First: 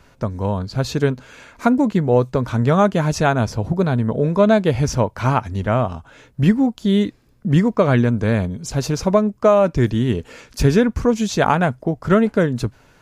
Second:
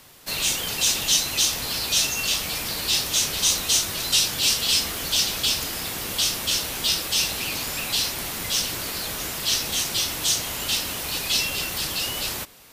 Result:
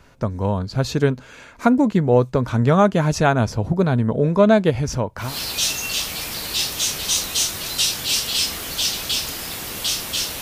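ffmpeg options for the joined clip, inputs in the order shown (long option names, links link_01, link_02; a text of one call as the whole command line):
ffmpeg -i cue0.wav -i cue1.wav -filter_complex "[0:a]asettb=1/sr,asplit=3[link_01][link_02][link_03];[link_01]atrim=end=4.704[link_04];[link_02]atrim=start=4.7:end=5.36,asetpts=PTS-STARTPTS,afade=type=in:duration=0.004:curve=qsin,afade=type=out:start_time=0.656:duration=0.004:curve=qsin,acompressor=threshold=-25dB:ratio=1.5:attack=3.2:release=140:knee=1:detection=peak[link_05];[link_03]atrim=start=5.356[link_06];[link_04][link_05]acrossfade=duration=0.004:curve1=hsin:curve2=qsin[link_07];[link_07][link_06]acrossfade=duration=0.004:curve1=qsin:curve2=hsin,apad=whole_dur=10.41,atrim=end=10.41,atrim=end=5.36,asetpts=PTS-STARTPTS[link_08];[1:a]atrim=start=1.52:end=6.75,asetpts=PTS-STARTPTS[link_09];[link_08][link_09]acrossfade=duration=0.18:curve1=tri:curve2=tri" out.wav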